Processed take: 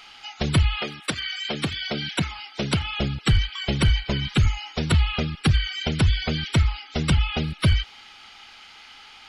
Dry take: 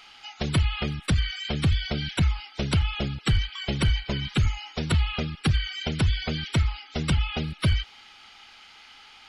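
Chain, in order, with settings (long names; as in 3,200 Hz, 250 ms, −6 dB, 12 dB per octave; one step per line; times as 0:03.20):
0:00.78–0:02.98: high-pass filter 370 Hz → 120 Hz 12 dB per octave
level +3.5 dB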